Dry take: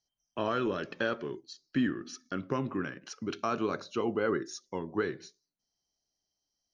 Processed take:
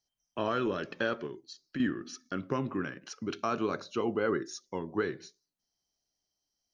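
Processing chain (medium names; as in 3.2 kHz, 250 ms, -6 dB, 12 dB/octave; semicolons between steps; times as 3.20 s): 1.26–1.80 s: compression 2:1, threshold -41 dBFS, peak gain reduction 9.5 dB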